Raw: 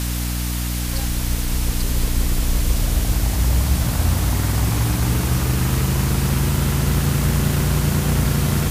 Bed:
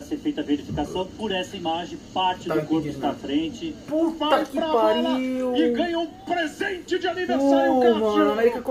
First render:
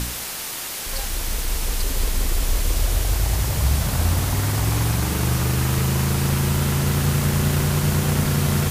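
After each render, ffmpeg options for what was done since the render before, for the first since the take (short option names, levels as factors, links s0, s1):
-af "bandreject=f=60:t=h:w=4,bandreject=f=120:t=h:w=4,bandreject=f=180:t=h:w=4,bandreject=f=240:t=h:w=4,bandreject=f=300:t=h:w=4"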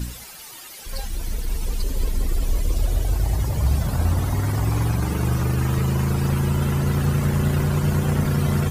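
-af "afftdn=nr=14:nf=-30"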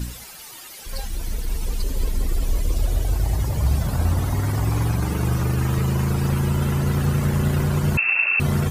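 -filter_complex "[0:a]asettb=1/sr,asplit=3[s0][s1][s2];[s0]atrim=end=7.974[s3];[s1]atrim=start=7.97:end=8.4,asetpts=PTS-STARTPTS,afade=t=in:d=0.004:c=qsin,afade=t=out:st=0.426:d=0.004:c=qsin,lowpass=f=2400:t=q:w=0.5098,lowpass=f=2400:t=q:w=0.6013,lowpass=f=2400:t=q:w=0.9,lowpass=f=2400:t=q:w=2.563,afreqshift=-2800[s4];[s2]atrim=start=8.396[s5];[s3][s4]acrossfade=d=0.004:c1=hsin:c2=qsin[s6];[s6][s5]acrossfade=d=0.004:c1=qsin:c2=hsin"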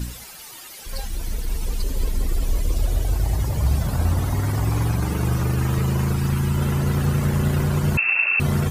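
-filter_complex "[0:a]asettb=1/sr,asplit=3[s0][s1][s2];[s0]atrim=end=6.134[s3];[s1]atrim=start=6.13:end=6.57,asetpts=PTS-STARTPTS,afade=t=in:d=0.004:c=qsin,afade=t=out:st=0.436:d=0.004:c=qsin,equalizer=f=560:w=1.5:g=-7[s4];[s2]atrim=start=6.566[s5];[s3][s4]acrossfade=d=0.004:c1=hsin:c2=qsin[s6];[s6][s5]acrossfade=d=0.004:c1=qsin:c2=hsin"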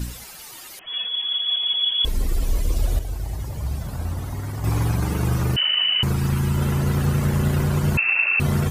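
-filter_complex "[0:a]asettb=1/sr,asplit=3[s0][s1][s2];[s0]atrim=end=0.794[s3];[s1]atrim=start=0.79:end=2.05,asetpts=PTS-STARTPTS,afade=t=in:d=0.004:c=qsin,afade=t=out:st=1.256:d=0.004:c=qsin,lowpass=f=2900:t=q:w=0.5098,lowpass=f=2900:t=q:w=0.6013,lowpass=f=2900:t=q:w=0.9,lowpass=f=2900:t=q:w=2.563,afreqshift=-3400[s4];[s2]atrim=start=2.046[s5];[s3][s4]acrossfade=d=0.004:c1=hsin:c2=qsin[s6];[s6][s5]acrossfade=d=0.004:c1=qsin:c2=hsin,asettb=1/sr,asplit=3[s7][s8][s9];[s7]atrim=end=5.564[s10];[s8]atrim=start=5.56:end=6.03,asetpts=PTS-STARTPTS,afade=t=in:d=0.004:c=qsin,afade=t=out:st=0.466:d=0.004:c=qsin,lowpass=f=2600:t=q:w=0.5098,lowpass=f=2600:t=q:w=0.6013,lowpass=f=2600:t=q:w=0.9,lowpass=f=2600:t=q:w=2.563,afreqshift=-3100[s11];[s9]atrim=start=6.026[s12];[s10][s11]acrossfade=d=0.004:c1=hsin:c2=qsin[s13];[s13][s12]acrossfade=d=0.004:c1=qsin:c2=hsin,asplit=3[s14][s15][s16];[s14]atrim=end=2.992[s17];[s15]atrim=start=2.988:end=4.642,asetpts=PTS-STARTPTS,volume=0.447[s18];[s16]atrim=start=4.638[s19];[s17][s18]acrossfade=d=0.004:c1=hsin:c2=hsin[s20];[s20][s19]acrossfade=d=0.004:c1=hsin:c2=hsin"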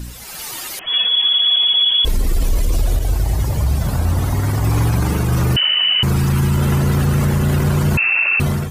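-af "alimiter=limit=0.0944:level=0:latency=1:release=53,dynaudnorm=f=120:g=5:m=3.76"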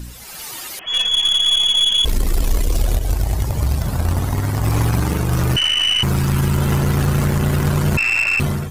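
-af "aeval=exprs='0.355*(cos(1*acos(clip(val(0)/0.355,-1,1)))-cos(1*PI/2))+0.0355*(cos(2*acos(clip(val(0)/0.355,-1,1)))-cos(2*PI/2))+0.0501*(cos(3*acos(clip(val(0)/0.355,-1,1)))-cos(3*PI/2))+0.0126*(cos(5*acos(clip(val(0)/0.355,-1,1)))-cos(5*PI/2))':c=same"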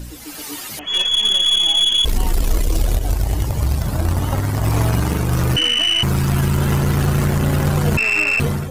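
-filter_complex "[1:a]volume=0.251[s0];[0:a][s0]amix=inputs=2:normalize=0"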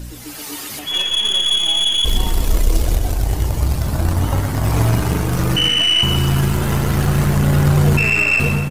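-filter_complex "[0:a]asplit=2[s0][s1];[s1]adelay=34,volume=0.237[s2];[s0][s2]amix=inputs=2:normalize=0,aecho=1:1:125|250|375|500|625:0.398|0.175|0.0771|0.0339|0.0149"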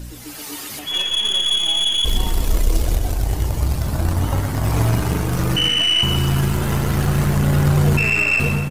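-af "volume=0.794"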